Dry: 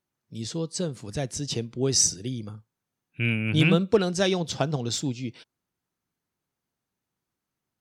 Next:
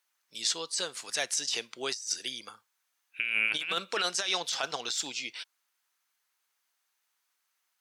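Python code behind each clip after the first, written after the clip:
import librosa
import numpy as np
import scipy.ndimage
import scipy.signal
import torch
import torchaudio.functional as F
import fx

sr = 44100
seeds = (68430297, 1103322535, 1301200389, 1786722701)

y = scipy.signal.sosfilt(scipy.signal.butter(2, 1300.0, 'highpass', fs=sr, output='sos'), x)
y = fx.over_compress(y, sr, threshold_db=-36.0, ratio=-1.0)
y = y * librosa.db_to_amplitude(4.5)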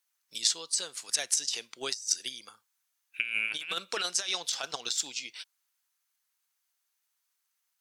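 y = fx.high_shelf(x, sr, hz=4100.0, db=8.5)
y = fx.transient(y, sr, attack_db=8, sustain_db=1)
y = y * librosa.db_to_amplitude(-7.5)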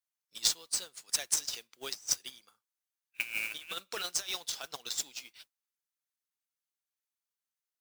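y = fx.mod_noise(x, sr, seeds[0], snr_db=10)
y = fx.upward_expand(y, sr, threshold_db=-50.0, expansion=1.5)
y = y * librosa.db_to_amplitude(-1.0)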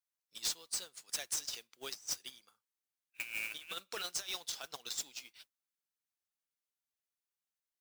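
y = np.clip(x, -10.0 ** (-27.0 / 20.0), 10.0 ** (-27.0 / 20.0))
y = y * librosa.db_to_amplitude(-3.5)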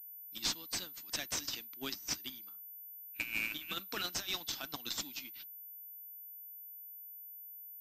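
y = fx.low_shelf_res(x, sr, hz=360.0, db=6.5, q=3.0)
y = fx.pwm(y, sr, carrier_hz=14000.0)
y = y * librosa.db_to_amplitude(3.5)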